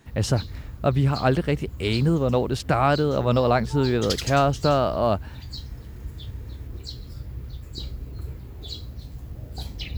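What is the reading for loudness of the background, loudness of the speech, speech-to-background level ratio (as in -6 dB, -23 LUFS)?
-36.5 LUFS, -23.0 LUFS, 13.5 dB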